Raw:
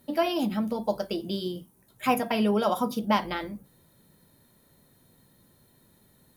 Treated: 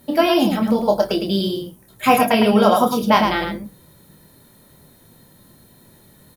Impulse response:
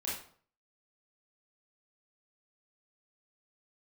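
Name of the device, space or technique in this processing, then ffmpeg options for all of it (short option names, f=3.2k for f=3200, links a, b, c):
slapback doubling: -filter_complex "[0:a]asplit=3[a][b][c];[b]adelay=26,volume=-5dB[d];[c]adelay=108,volume=-5dB[e];[a][d][e]amix=inputs=3:normalize=0,volume=9dB"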